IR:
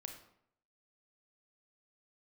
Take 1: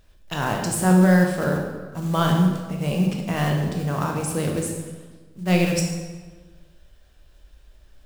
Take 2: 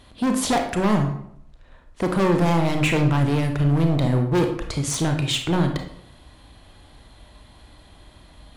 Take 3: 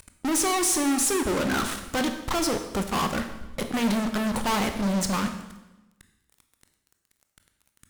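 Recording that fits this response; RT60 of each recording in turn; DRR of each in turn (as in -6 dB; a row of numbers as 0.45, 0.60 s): 2; 1.4, 0.70, 1.0 s; 1.0, 4.0, 6.5 dB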